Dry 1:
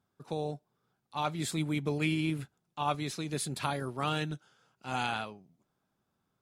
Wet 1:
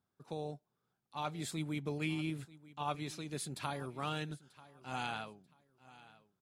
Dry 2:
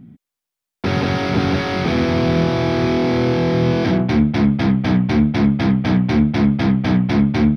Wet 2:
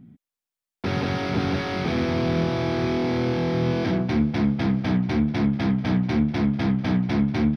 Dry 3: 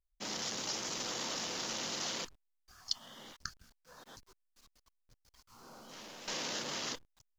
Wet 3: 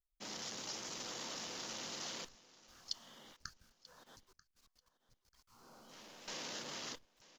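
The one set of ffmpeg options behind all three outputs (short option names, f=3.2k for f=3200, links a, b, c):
-af "aecho=1:1:938|1876:0.106|0.0254,volume=-6.5dB"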